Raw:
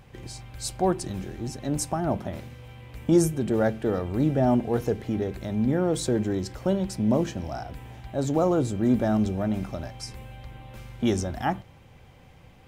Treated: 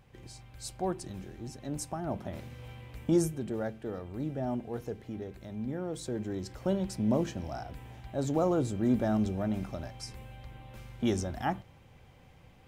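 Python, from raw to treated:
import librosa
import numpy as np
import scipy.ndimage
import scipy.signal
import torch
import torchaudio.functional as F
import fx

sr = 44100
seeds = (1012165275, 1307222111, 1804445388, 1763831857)

y = fx.gain(x, sr, db=fx.line((2.06, -9.0), (2.67, -1.0), (3.69, -12.0), (5.99, -12.0), (6.72, -5.0)))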